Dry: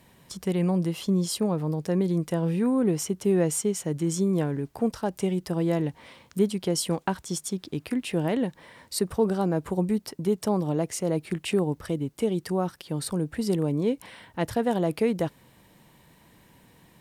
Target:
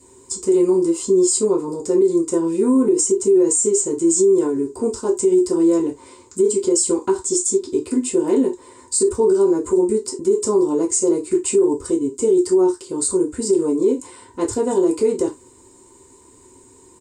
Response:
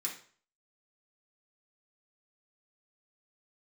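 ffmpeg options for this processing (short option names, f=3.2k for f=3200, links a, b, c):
-filter_complex "[0:a]firequalizer=gain_entry='entry(100,0);entry(160,-15);entry(370,6);entry(650,-22);entry(960,-2);entry(1600,-16);entry(3200,-20);entry(7800,11);entry(11000,-24)':delay=0.05:min_phase=1[a];[1:a]atrim=start_sample=2205,afade=t=out:st=0.25:d=0.01,atrim=end_sample=11466,asetrate=88200,aresample=44100[b];[a][b]afir=irnorm=-1:irlink=0,alimiter=level_in=27dB:limit=-1dB:release=50:level=0:latency=1,volume=-7.5dB"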